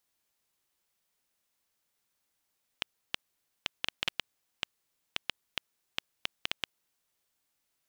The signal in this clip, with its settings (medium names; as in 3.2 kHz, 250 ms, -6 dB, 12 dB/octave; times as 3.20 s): random clicks 4.3 per s -11 dBFS 4.25 s